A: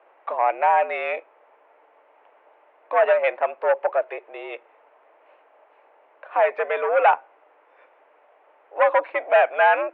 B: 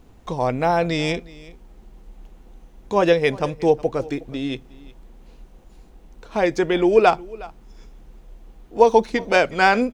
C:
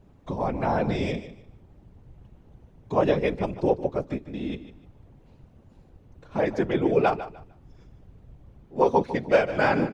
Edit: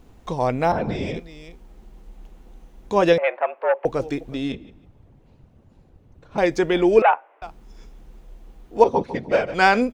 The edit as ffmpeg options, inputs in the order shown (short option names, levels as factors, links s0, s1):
-filter_complex "[2:a]asplit=3[s0][s1][s2];[0:a]asplit=2[s3][s4];[1:a]asplit=6[s5][s6][s7][s8][s9][s10];[s5]atrim=end=0.722[s11];[s0]atrim=start=0.718:end=1.162[s12];[s6]atrim=start=1.158:end=3.182[s13];[s3]atrim=start=3.178:end=3.852[s14];[s7]atrim=start=3.848:end=4.522[s15];[s1]atrim=start=4.518:end=6.382[s16];[s8]atrim=start=6.378:end=7.022[s17];[s4]atrim=start=7.018:end=7.422[s18];[s9]atrim=start=7.418:end=8.842[s19];[s2]atrim=start=8.838:end=9.542[s20];[s10]atrim=start=9.538[s21];[s11][s12]acrossfade=d=0.004:c1=hsin:c2=hsin[s22];[s22][s13]acrossfade=d=0.004:c1=hsin:c2=hsin[s23];[s23][s14]acrossfade=d=0.004:c1=hsin:c2=hsin[s24];[s24][s15]acrossfade=d=0.004:c1=hsin:c2=hsin[s25];[s25][s16]acrossfade=d=0.004:c1=hsin:c2=hsin[s26];[s26][s17]acrossfade=d=0.004:c1=hsin:c2=hsin[s27];[s27][s18]acrossfade=d=0.004:c1=hsin:c2=hsin[s28];[s28][s19]acrossfade=d=0.004:c1=hsin:c2=hsin[s29];[s29][s20]acrossfade=d=0.004:c1=hsin:c2=hsin[s30];[s30][s21]acrossfade=d=0.004:c1=hsin:c2=hsin"